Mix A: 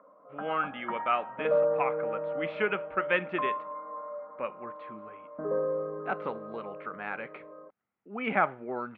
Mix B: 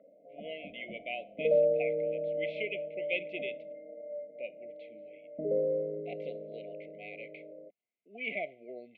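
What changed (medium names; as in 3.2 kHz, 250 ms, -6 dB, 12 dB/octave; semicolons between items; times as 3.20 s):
speech: add high-pass 1.1 kHz 6 dB/octave; master: add brick-wall FIR band-stop 730–2000 Hz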